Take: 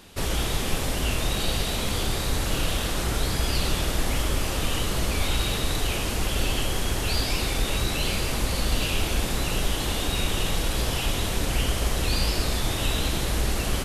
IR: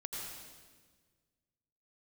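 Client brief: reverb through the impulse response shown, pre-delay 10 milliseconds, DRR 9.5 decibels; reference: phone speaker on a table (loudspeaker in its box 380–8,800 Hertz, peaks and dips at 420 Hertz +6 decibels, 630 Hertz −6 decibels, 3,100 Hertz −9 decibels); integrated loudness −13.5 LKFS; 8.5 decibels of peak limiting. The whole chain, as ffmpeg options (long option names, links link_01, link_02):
-filter_complex "[0:a]alimiter=limit=-19.5dB:level=0:latency=1,asplit=2[link_01][link_02];[1:a]atrim=start_sample=2205,adelay=10[link_03];[link_02][link_03]afir=irnorm=-1:irlink=0,volume=-9.5dB[link_04];[link_01][link_04]amix=inputs=2:normalize=0,highpass=frequency=380:width=0.5412,highpass=frequency=380:width=1.3066,equalizer=frequency=420:width_type=q:width=4:gain=6,equalizer=frequency=630:width_type=q:width=4:gain=-6,equalizer=frequency=3100:width_type=q:width=4:gain=-9,lowpass=frequency=8800:width=0.5412,lowpass=frequency=8800:width=1.3066,volume=19.5dB"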